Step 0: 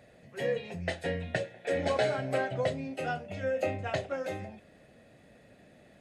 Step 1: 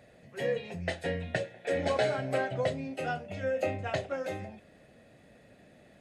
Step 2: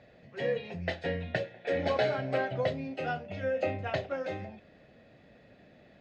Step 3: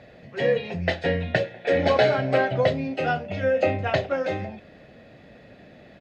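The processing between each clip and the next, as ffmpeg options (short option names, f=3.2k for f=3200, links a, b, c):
-af anull
-af "lowpass=f=5.2k:w=0.5412,lowpass=f=5.2k:w=1.3066"
-af "aresample=32000,aresample=44100,volume=9dB"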